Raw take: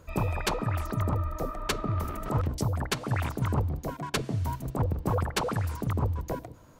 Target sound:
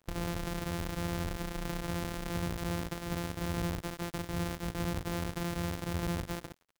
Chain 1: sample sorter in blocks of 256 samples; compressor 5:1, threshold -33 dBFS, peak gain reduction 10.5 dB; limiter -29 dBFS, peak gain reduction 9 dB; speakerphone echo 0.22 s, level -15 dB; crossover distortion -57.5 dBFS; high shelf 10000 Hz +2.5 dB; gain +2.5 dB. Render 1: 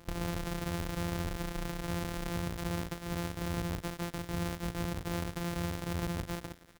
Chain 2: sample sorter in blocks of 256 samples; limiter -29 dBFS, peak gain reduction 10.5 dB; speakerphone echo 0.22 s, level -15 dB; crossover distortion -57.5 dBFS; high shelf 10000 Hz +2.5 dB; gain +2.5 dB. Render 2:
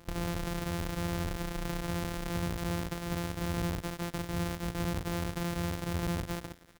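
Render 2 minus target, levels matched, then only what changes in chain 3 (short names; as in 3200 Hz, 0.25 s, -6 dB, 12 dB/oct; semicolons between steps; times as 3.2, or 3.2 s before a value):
crossover distortion: distortion -10 dB
change: crossover distortion -47.5 dBFS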